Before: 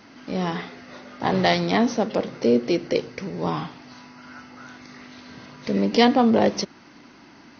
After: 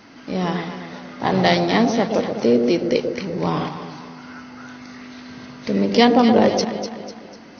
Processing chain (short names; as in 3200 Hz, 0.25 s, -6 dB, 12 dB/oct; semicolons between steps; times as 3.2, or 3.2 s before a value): echo with dull and thin repeats by turns 0.124 s, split 810 Hz, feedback 66%, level -5.5 dB; 3.12–3.69 transient shaper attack +1 dB, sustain +6 dB; gain +2.5 dB